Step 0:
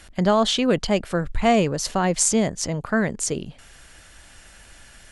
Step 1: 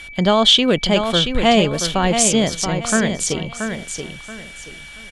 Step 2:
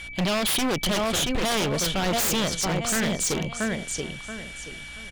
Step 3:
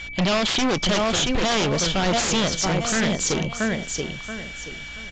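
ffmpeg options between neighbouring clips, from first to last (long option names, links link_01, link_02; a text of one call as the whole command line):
ffmpeg -i in.wav -af "aeval=exprs='val(0)+0.01*sin(2*PI*2300*n/s)':channel_layout=same,equalizer=frequency=3300:width=2.9:gain=11.5,aecho=1:1:679|1358|2037:0.447|0.121|0.0326,volume=3dB" out.wav
ffmpeg -i in.wav -filter_complex "[0:a]acrossover=split=1700[link_01][link_02];[link_01]alimiter=limit=-12dB:level=0:latency=1:release=46[link_03];[link_03][link_02]amix=inputs=2:normalize=0,aeval=exprs='0.141*(abs(mod(val(0)/0.141+3,4)-2)-1)':channel_layout=same,aeval=exprs='val(0)+0.00398*(sin(2*PI*60*n/s)+sin(2*PI*2*60*n/s)/2+sin(2*PI*3*60*n/s)/3+sin(2*PI*4*60*n/s)/4+sin(2*PI*5*60*n/s)/5)':channel_layout=same,volume=-2dB" out.wav
ffmpeg -i in.wav -af "volume=3.5dB" -ar 16000 -c:a aac -b:a 48k out.aac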